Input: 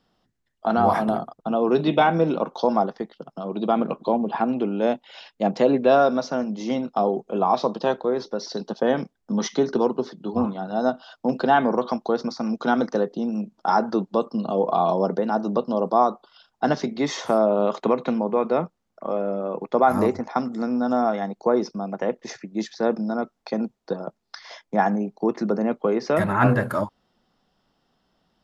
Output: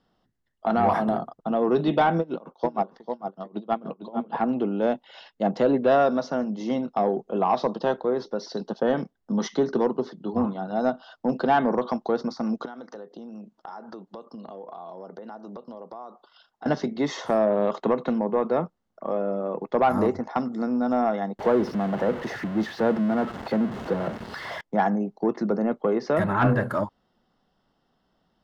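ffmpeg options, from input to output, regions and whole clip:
-filter_complex "[0:a]asettb=1/sr,asplit=3[a][b][c];[a]atrim=end=2.194[d];[b]atrim=start=2.19:end=4.37,asetpts=PTS-STARTPTS,afade=t=in:d=0.004:c=qsin,afade=t=out:st=2.176:d=0.004:c=qsin,aecho=1:1:446:0.447,atrim=end_sample=96138,aeval=exprs='val(0)*pow(10,-25*(0.5-0.5*cos(2*PI*6.5*n/s))/20)':c=same[e];[c]atrim=start=4.366[f];[d][e]acrossfade=d=0.004:c1=hsin:c2=qsin[g];[g][f]acrossfade=d=0.004:c1=qsin:c2=hsin,asettb=1/sr,asplit=3[h][i][j];[h]atrim=end=12.654[k];[i]atrim=start=12.65:end=16.66,asetpts=PTS-STARTPTS,afade=t=in:d=0.004:c=qsin,afade=t=out:st=4.006:d=0.004:c=qsin,lowshelf=f=200:g=-11,acompressor=threshold=-36dB:ratio=6:attack=3.2:release=140:knee=1:detection=peak[l];[j]atrim=start=16.656[m];[k][l]acrossfade=d=0.004:c1=hsin:c2=qsin[n];[n][m]acrossfade=d=0.004:c1=qsin:c2=hsin,asettb=1/sr,asplit=3[o][p][q];[o]atrim=end=21.394[r];[p]atrim=start=21.39:end=24.61,asetpts=PTS-STARTPTS,afade=t=in:d=0.004:c=qsin,afade=t=out:st=3.216:d=0.004:c=qsin,aeval=exprs='val(0)+0.5*0.0501*sgn(val(0))':c=same,highpass=71,bass=f=250:g=2,treble=f=4k:g=-14[s];[q]atrim=start=24.606[t];[r][s]acrossfade=d=0.004:c1=hsin:c2=qsin[u];[u][t]acrossfade=d=0.004:c1=qsin:c2=hsin,aemphasis=mode=reproduction:type=cd,bandreject=f=2.4k:w=8.8,acontrast=90,volume=-8.5dB"

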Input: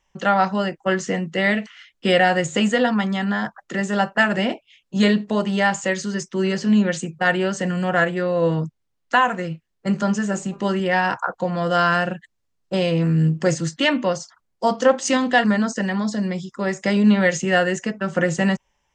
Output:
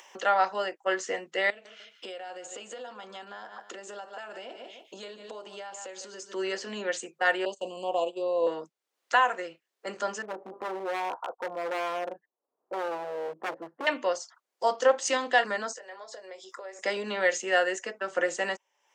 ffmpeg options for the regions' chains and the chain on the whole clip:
-filter_complex "[0:a]asettb=1/sr,asplit=3[a][b][c];[a]atrim=end=1.504[d];[b]atrim=start=1.5:end=6.34,asetpts=PTS-STARTPTS,afade=t=in:d=0.004:c=qsin,afade=t=out:st=4.836:d=0.004:c=qsin,aecho=1:1:148|296:0.133|0.036,atrim=end_sample=213444,acompressor=threshold=-33dB:ratio=5:attack=3.2:release=140:knee=1:detection=peak,equalizer=f=1.9k:t=o:w=0.31:g=-10.5[e];[c]atrim=start=6.336[f];[d][e]acrossfade=d=0.004:c1=hsin:c2=qsin[g];[g][f]acrossfade=d=0.004:c1=qsin:c2=hsin,asettb=1/sr,asplit=3[h][i][j];[h]atrim=end=7.454[k];[i]atrim=start=7.45:end=8.47,asetpts=PTS-STARTPTS,afade=t=in:d=0.004:c=qsin,afade=t=out:st=1.016:d=0.004:c=qsin,asuperstop=centerf=1700:order=12:qfactor=1.1,equalizer=f=5.5k:w=7.2:g=-12.5,agate=range=-22dB:threshold=-26dB:ratio=16:release=100:detection=peak[l];[j]atrim=start=8.466[m];[k][l]acrossfade=d=0.004:c1=hsin:c2=qsin[n];[n][m]acrossfade=d=0.004:c1=qsin:c2=hsin,asettb=1/sr,asplit=3[o][p][q];[o]atrim=end=10.224[r];[p]atrim=start=10.22:end=13.87,asetpts=PTS-STARTPTS,afade=t=in:d=0.004:c=qsin,afade=t=out:st=3.646:d=0.004:c=qsin,lowpass=f=1k:w=0.5412,lowpass=f=1k:w=1.3066,aeval=exprs='0.106*(abs(mod(val(0)/0.106+3,4)-2)-1)':c=same[s];[q]atrim=start=13.866[t];[r][s]acrossfade=d=0.004:c1=hsin:c2=qsin[u];[u][t]acrossfade=d=0.004:c1=qsin:c2=hsin,asettb=1/sr,asplit=3[v][w][x];[v]atrim=end=15.754[y];[w]atrim=start=15.75:end=16.79,asetpts=PTS-STARTPTS,afade=t=in:d=0.004:c=qsin,afade=t=out:st=1.036:d=0.004:c=qsin,acompressor=threshold=-36dB:ratio=16:attack=3.2:release=140:knee=1:detection=peak,highpass=f=520:t=q:w=1.9,asplit=2[z][aa];[aa]adelay=21,volume=-11dB[ab];[z][ab]amix=inputs=2:normalize=0,atrim=end_sample=45864[ac];[x]atrim=start=16.786[ad];[y][ac]acrossfade=d=0.004:c1=hsin:c2=qsin[ae];[ae][ad]acrossfade=d=0.004:c1=qsin:c2=hsin,highpass=f=380:w=0.5412,highpass=f=380:w=1.3066,acompressor=mode=upward:threshold=-30dB:ratio=2.5,volume=-5.5dB"

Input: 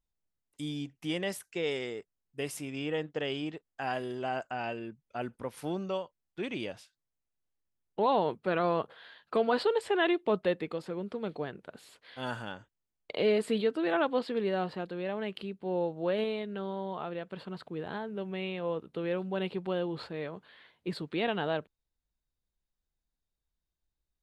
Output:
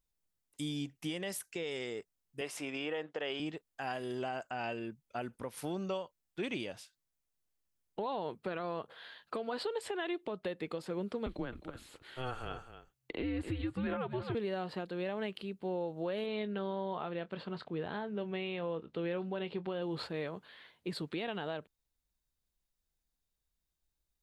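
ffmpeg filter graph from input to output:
-filter_complex "[0:a]asettb=1/sr,asplit=3[a][b][c];[a]atrim=end=2.414[d];[b]atrim=start=2.41:end=3.4,asetpts=PTS-STARTPTS,afade=t=in:d=0.004:c=qsin,afade=t=out:st=0.986:d=0.004:c=qsin,highpass=650,aemphasis=mode=reproduction:type=riaa,acontrast=78[e];[c]atrim=start=3.396[f];[d][e]acrossfade=d=0.004:c1=hsin:c2=qsin[g];[g][f]acrossfade=d=0.004:c1=qsin:c2=hsin,asettb=1/sr,asplit=3[h][i][j];[h]atrim=end=11.264[k];[i]atrim=start=11.26:end=14.35,asetpts=PTS-STARTPTS,afade=t=in:d=0.004:c=qsin,afade=t=out:st=3.086:d=0.004:c=qsin,acrossover=split=3200[l][m];[m]acompressor=threshold=-60dB:ratio=4:attack=1:release=60[n];[l][n]amix=inputs=2:normalize=0,aecho=1:1:262:0.224,atrim=end_sample=136269,afreqshift=-130[o];[j]atrim=start=14.346[p];[k][o]acrossfade=d=0.004:c1=hsin:c2=qsin[q];[q][p]acrossfade=d=0.004:c1=qsin:c2=hsin,asettb=1/sr,asplit=3[r][s][t];[r]atrim=end=16.264[u];[s]atrim=start=16.26:end=19.82,asetpts=PTS-STARTPTS,afade=t=in:d=0.004:c=qsin,afade=t=out:st=3.556:d=0.004:c=qsin,lowpass=4.6k,asplit=2[v][w];[w]adelay=24,volume=-13.5dB[x];[v][x]amix=inputs=2:normalize=0,atrim=end_sample=156996[y];[t]atrim=start=19.816[z];[u][y]acrossfade=d=0.004:c1=hsin:c2=qsin[aa];[aa][z]acrossfade=d=0.004:c1=qsin:c2=hsin,highshelf=f=4.7k:g=6,acompressor=threshold=-30dB:ratio=10,alimiter=level_in=3dB:limit=-24dB:level=0:latency=1:release=223,volume=-3dB"

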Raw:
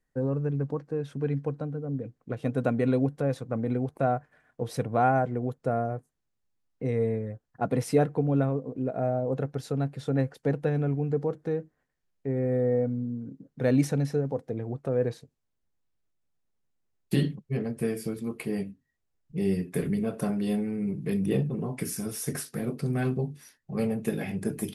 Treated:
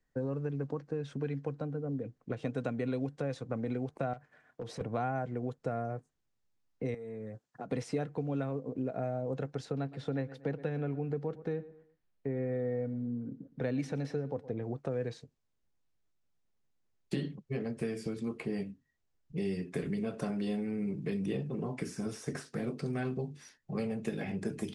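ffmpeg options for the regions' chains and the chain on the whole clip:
-filter_complex "[0:a]asettb=1/sr,asplit=3[a][b][c];[a]atrim=end=4.134[d];[b]atrim=start=4.13:end=4.81,asetpts=PTS-STARTPTS,afade=t=in:d=0.004:c=qsin,afade=t=out:st=0.676:d=0.004:c=qsin,highpass=f=130:p=1,volume=23.5dB,asoftclip=hard,volume=-23.5dB,acompressor=threshold=-37dB:ratio=4:attack=3.2:release=140:knee=1:detection=peak[e];[c]atrim=start=4.806[f];[d][e]acrossfade=d=0.004:c1=hsin:c2=qsin[g];[g][f]acrossfade=d=0.004:c1=qsin:c2=hsin,asettb=1/sr,asplit=3[h][i][j];[h]atrim=end=6.944[k];[i]atrim=start=6.94:end=7.71,asetpts=PTS-STARTPTS,afade=t=in:d=0.004:c=qsin,afade=t=out:st=0.766:d=0.004:c=qsin,highpass=140,highshelf=f=5.8k:g=10.5,acompressor=threshold=-37dB:ratio=16:attack=3.2:release=140:knee=1:detection=peak[l];[j]atrim=start=7.706[m];[k][l]acrossfade=d=0.004:c1=hsin:c2=qsin[n];[n][m]acrossfade=d=0.004:c1=qsin:c2=hsin,asettb=1/sr,asplit=3[o][p][q];[o]atrim=end=9.654[r];[p]atrim=start=9.65:end=14.63,asetpts=PTS-STARTPTS,afade=t=in:d=0.004:c=qsin,afade=t=out:st=4.976:d=0.004:c=qsin,equalizer=f=7.1k:t=o:w=1.2:g=-8.5,asplit=2[s][t];[t]adelay=116,lowpass=f=4.2k:p=1,volume=-19.5dB,asplit=2[u][v];[v]adelay=116,lowpass=f=4.2k:p=1,volume=0.31,asplit=2[w][x];[x]adelay=116,lowpass=f=4.2k:p=1,volume=0.31[y];[s][u][w][y]amix=inputs=4:normalize=0,atrim=end_sample=219618[z];[q]atrim=start=14.626[aa];[r][z]acrossfade=d=0.004:c1=hsin:c2=qsin[ab];[ab][aa]acrossfade=d=0.004:c1=qsin:c2=hsin,lowpass=f=7.8k:w=0.5412,lowpass=f=7.8k:w=1.3066,acrossover=split=230|1800[ac][ad][ae];[ac]acompressor=threshold=-40dB:ratio=4[af];[ad]acompressor=threshold=-35dB:ratio=4[ag];[ae]acompressor=threshold=-49dB:ratio=4[ah];[af][ag][ah]amix=inputs=3:normalize=0"

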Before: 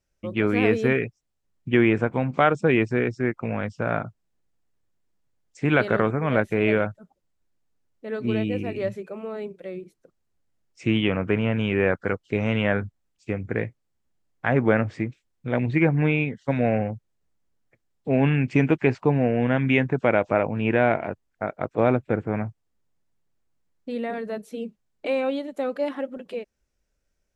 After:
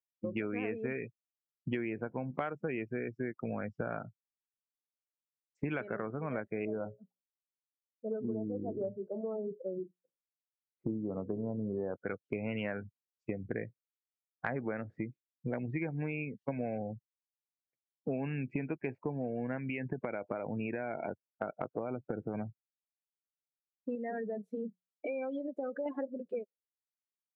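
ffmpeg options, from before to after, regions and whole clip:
-filter_complex "[0:a]asettb=1/sr,asplit=3[a][b][c];[a]atrim=end=6.654[d];[b]atrim=start=6.65:end=11.96,asetpts=PTS-STARTPTS,afade=t=in:d=0.004:c=qsin,afade=t=out:st=5.306:d=0.004:c=qsin,lowpass=f=1.2k:w=0.5412,lowpass=f=1.2k:w=1.3066,bandreject=f=60:t=h:w=6,bandreject=f=120:t=h:w=6,bandreject=f=180:t=h:w=6,bandreject=f=240:t=h:w=6,bandreject=f=300:t=h:w=6,bandreject=f=360:t=h:w=6,bandreject=f=420:t=h:w=6,bandreject=f=480:t=h:w=6,bandreject=f=540:t=h:w=6,bandreject=f=600:t=h:w=6[e];[c]atrim=start=11.956[f];[d][e]acrossfade=d=0.004:c1=hsin:c2=qsin[g];[g][f]acrossfade=d=0.004:c1=qsin:c2=hsin,asettb=1/sr,asplit=3[h][i][j];[h]atrim=end=19.584[k];[i]atrim=start=19.58:end=22.35,asetpts=PTS-STARTPTS,afade=t=in:d=0.004:c=qsin,afade=t=out:st=2.766:d=0.004:c=qsin,highshelf=f=2.1k:g=7,acompressor=threshold=-20dB:ratio=6:attack=3.2:release=140:knee=1:detection=peak,lowpass=f=2.9k:p=1[l];[j]atrim=start=22.346[m];[k][l]acrossfade=d=0.004:c1=hsin:c2=qsin[n];[n][m]acrossfade=d=0.004:c1=qsin:c2=hsin,asettb=1/sr,asplit=3[o][p][q];[o]atrim=end=23.954[r];[p]atrim=start=23.95:end=25.86,asetpts=PTS-STARTPTS,afade=t=in:d=0.004:c=qsin,afade=t=out:st=1.906:d=0.004:c=qsin,acompressor=threshold=-32dB:ratio=3:attack=3.2:release=140:knee=1:detection=peak,equalizer=f=1.6k:t=o:w=1:g=2.5,bandreject=f=182.1:t=h:w=4,bandreject=f=364.2:t=h:w=4,bandreject=f=546.3:t=h:w=4[s];[q]atrim=start=25.856[t];[r][s]acrossfade=d=0.004:c1=hsin:c2=qsin[u];[u][t]acrossfade=d=0.004:c1=qsin:c2=hsin,afftdn=nr=34:nf=-31,highpass=130,acompressor=threshold=-33dB:ratio=8"

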